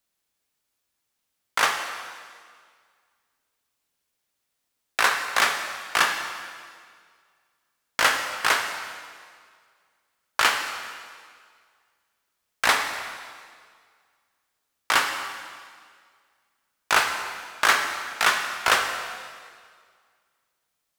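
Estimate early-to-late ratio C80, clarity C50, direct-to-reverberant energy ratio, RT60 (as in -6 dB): 7.0 dB, 5.5 dB, 4.0 dB, 1.9 s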